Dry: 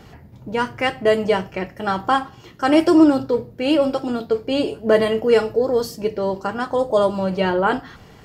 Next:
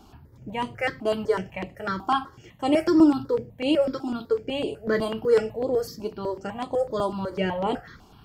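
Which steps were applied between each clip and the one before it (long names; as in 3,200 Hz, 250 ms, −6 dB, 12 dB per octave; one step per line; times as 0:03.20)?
step-sequenced phaser 8 Hz 510–5,500 Hz
level −3.5 dB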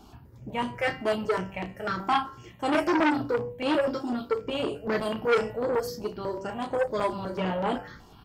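hum removal 97.04 Hz, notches 32
on a send: ambience of single reflections 17 ms −10.5 dB, 33 ms −10 dB
on the sum: saturating transformer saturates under 1,500 Hz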